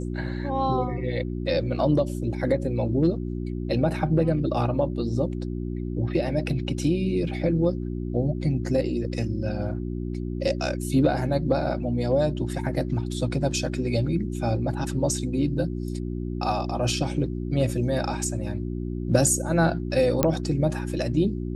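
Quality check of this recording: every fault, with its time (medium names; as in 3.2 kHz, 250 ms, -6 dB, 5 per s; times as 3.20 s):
hum 60 Hz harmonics 6 -30 dBFS
20.23 s: pop -6 dBFS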